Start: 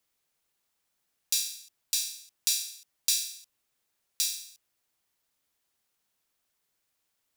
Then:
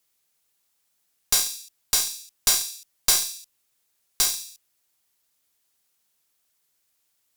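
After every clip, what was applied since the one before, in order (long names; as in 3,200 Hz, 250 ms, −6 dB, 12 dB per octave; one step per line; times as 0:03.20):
high-shelf EQ 3,800 Hz +7.5 dB
tube saturation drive 13 dB, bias 0.75
level +5.5 dB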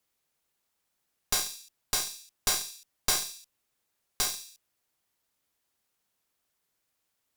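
high-shelf EQ 2,700 Hz −9 dB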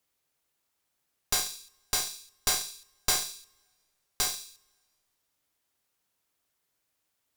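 convolution reverb, pre-delay 3 ms, DRR 12 dB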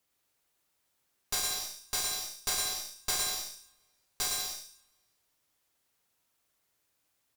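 brickwall limiter −17.5 dBFS, peak gain reduction 8 dB
bouncing-ball delay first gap 110 ms, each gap 0.7×, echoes 5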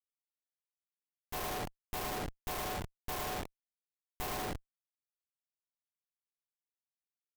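linear-phase brick-wall band-stop 1,100–12,000 Hz
comparator with hysteresis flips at −40.5 dBFS
level +9 dB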